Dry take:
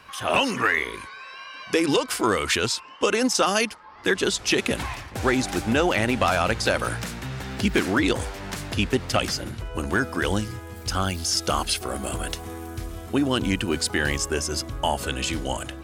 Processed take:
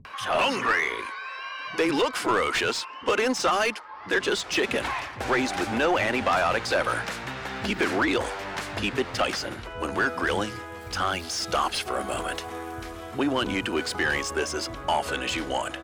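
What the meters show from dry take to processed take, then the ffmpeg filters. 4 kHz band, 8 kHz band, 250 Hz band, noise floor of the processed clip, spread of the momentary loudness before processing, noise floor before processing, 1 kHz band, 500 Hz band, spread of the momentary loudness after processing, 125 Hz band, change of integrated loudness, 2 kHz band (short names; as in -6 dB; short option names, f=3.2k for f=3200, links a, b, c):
-3.0 dB, -6.5 dB, -4.5 dB, -40 dBFS, 11 LU, -41 dBFS, +1.0 dB, -1.5 dB, 10 LU, -8.5 dB, -2.0 dB, 0.0 dB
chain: -filter_complex "[0:a]acrossover=split=180[a][b];[b]adelay=50[c];[a][c]amix=inputs=2:normalize=0,asplit=2[d][e];[e]highpass=f=720:p=1,volume=19dB,asoftclip=type=tanh:threshold=-6.5dB[f];[d][f]amix=inputs=2:normalize=0,lowpass=f=2k:p=1,volume=-6dB,acompressor=mode=upward:threshold=-32dB:ratio=2.5,volume=-6dB"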